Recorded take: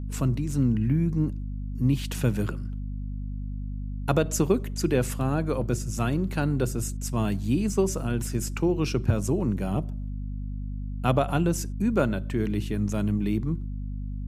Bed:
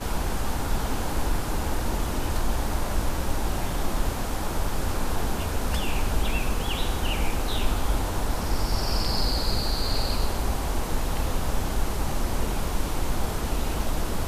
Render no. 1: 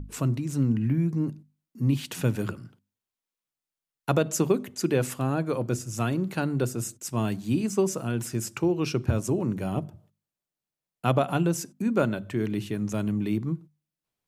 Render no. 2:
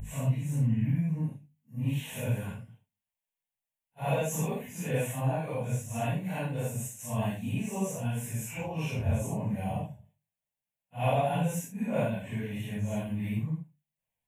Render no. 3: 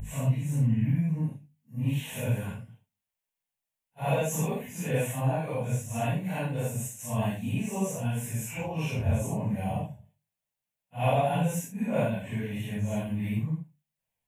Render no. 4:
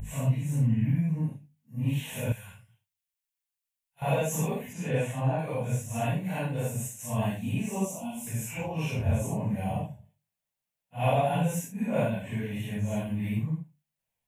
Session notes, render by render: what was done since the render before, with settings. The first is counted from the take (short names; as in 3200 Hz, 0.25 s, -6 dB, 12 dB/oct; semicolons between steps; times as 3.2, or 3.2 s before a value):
notches 50/100/150/200/250 Hz
phase scrambler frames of 0.2 s; fixed phaser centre 1300 Hz, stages 6
gain +2 dB
2.32–4.02 passive tone stack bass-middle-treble 10-0-10; 4.73–5.39 air absorption 57 m; 7.85–8.27 fixed phaser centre 450 Hz, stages 6